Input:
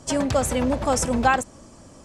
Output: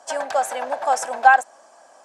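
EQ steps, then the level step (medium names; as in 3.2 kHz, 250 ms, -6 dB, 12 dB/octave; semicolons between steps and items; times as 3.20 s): resonant high-pass 730 Hz, resonance Q 4.9; peaking EQ 1.6 kHz +11.5 dB 0.21 oct; -4.5 dB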